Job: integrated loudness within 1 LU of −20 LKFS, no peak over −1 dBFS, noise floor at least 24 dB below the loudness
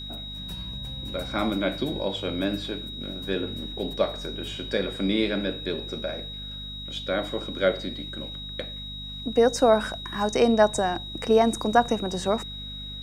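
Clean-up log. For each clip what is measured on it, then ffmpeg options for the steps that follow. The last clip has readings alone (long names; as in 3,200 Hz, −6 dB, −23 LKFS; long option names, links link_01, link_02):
mains hum 50 Hz; hum harmonics up to 250 Hz; level of the hum −39 dBFS; interfering tone 3,800 Hz; level of the tone −36 dBFS; integrated loudness −27.0 LKFS; sample peak −5.0 dBFS; target loudness −20.0 LKFS
→ -af "bandreject=frequency=50:width_type=h:width=4,bandreject=frequency=100:width_type=h:width=4,bandreject=frequency=150:width_type=h:width=4,bandreject=frequency=200:width_type=h:width=4,bandreject=frequency=250:width_type=h:width=4"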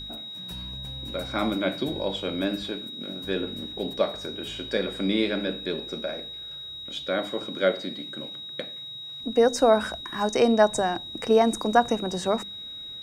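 mains hum none found; interfering tone 3,800 Hz; level of the tone −36 dBFS
→ -af "bandreject=frequency=3800:width=30"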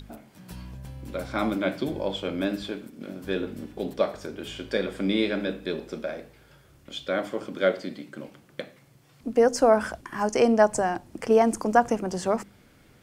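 interfering tone none found; integrated loudness −26.5 LKFS; sample peak −5.0 dBFS; target loudness −20.0 LKFS
→ -af "volume=6.5dB,alimiter=limit=-1dB:level=0:latency=1"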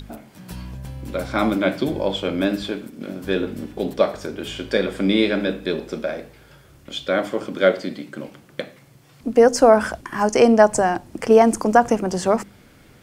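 integrated loudness −20.0 LKFS; sample peak −1.0 dBFS; background noise floor −50 dBFS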